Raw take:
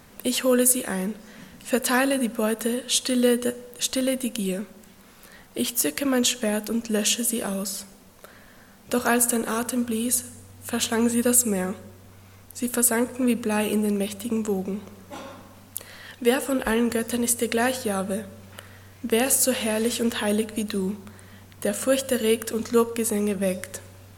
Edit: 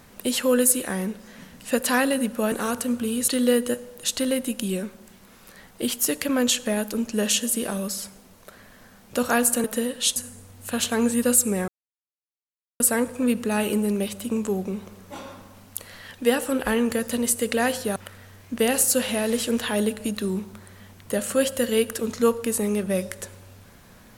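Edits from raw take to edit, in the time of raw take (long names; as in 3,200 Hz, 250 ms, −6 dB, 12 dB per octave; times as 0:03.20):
0:02.52–0:03.04: swap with 0:09.40–0:10.16
0:11.68–0:12.80: silence
0:17.96–0:18.48: remove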